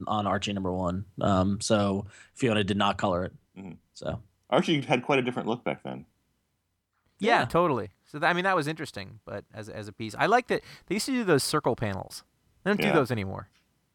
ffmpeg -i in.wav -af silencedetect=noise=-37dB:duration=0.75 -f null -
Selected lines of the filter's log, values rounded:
silence_start: 6.00
silence_end: 7.21 | silence_duration: 1.21